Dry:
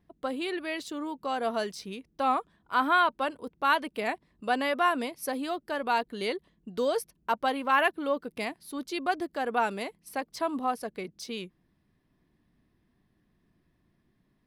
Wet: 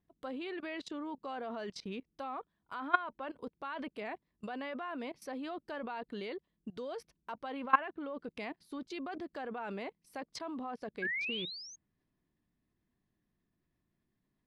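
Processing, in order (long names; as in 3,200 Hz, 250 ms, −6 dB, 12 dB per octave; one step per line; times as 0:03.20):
output level in coarse steps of 21 dB
sound drawn into the spectrogram rise, 0:11.02–0:11.76, 1,600–6,600 Hz −36 dBFS
treble cut that deepens with the level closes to 2,500 Hz, closed at −37.5 dBFS
level +2 dB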